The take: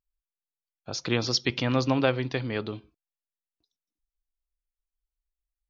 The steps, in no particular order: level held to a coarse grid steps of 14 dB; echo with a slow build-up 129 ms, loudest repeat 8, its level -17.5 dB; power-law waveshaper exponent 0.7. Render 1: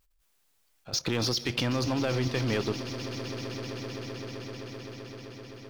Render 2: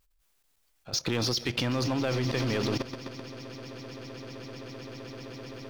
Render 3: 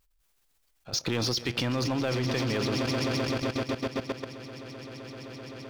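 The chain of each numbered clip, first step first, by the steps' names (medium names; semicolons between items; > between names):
power-law waveshaper > level held to a coarse grid > echo with a slow build-up; power-law waveshaper > echo with a slow build-up > level held to a coarse grid; echo with a slow build-up > power-law waveshaper > level held to a coarse grid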